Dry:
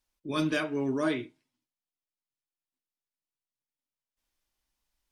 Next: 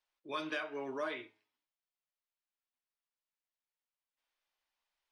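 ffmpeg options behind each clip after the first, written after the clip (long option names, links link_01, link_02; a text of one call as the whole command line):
ffmpeg -i in.wav -filter_complex "[0:a]acrossover=split=460 4400:gain=0.0891 1 0.2[link_01][link_02][link_03];[link_01][link_02][link_03]amix=inputs=3:normalize=0,acompressor=threshold=-35dB:ratio=4,flanger=delay=8.3:depth=1.2:regen=86:speed=1:shape=sinusoidal,volume=4.5dB" out.wav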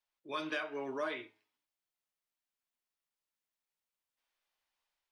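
ffmpeg -i in.wav -af "dynaudnorm=framelen=110:gausssize=5:maxgain=4.5dB,volume=-3.5dB" out.wav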